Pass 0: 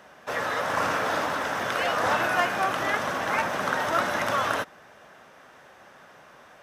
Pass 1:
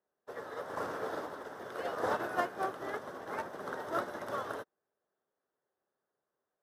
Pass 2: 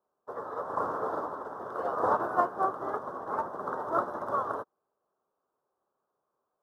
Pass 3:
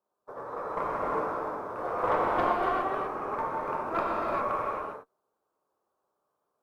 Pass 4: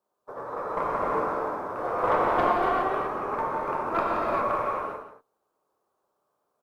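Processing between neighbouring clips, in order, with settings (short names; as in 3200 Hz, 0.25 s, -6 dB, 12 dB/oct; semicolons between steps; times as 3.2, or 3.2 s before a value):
fifteen-band EQ 400 Hz +11 dB, 2500 Hz -11 dB, 6300 Hz -5 dB; upward expander 2.5:1, over -41 dBFS; gain -7 dB
resonant high shelf 1600 Hz -11.5 dB, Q 3; gain +3 dB
tube stage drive 19 dB, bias 0.55; non-linear reverb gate 0.43 s flat, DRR -5 dB; gain -1.5 dB
echo 0.174 s -10.5 dB; gain +3 dB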